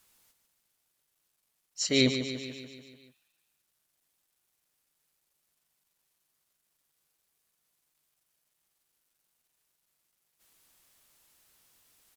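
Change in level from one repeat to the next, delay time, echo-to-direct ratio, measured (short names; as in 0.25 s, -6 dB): -4.5 dB, 0.146 s, -7.0 dB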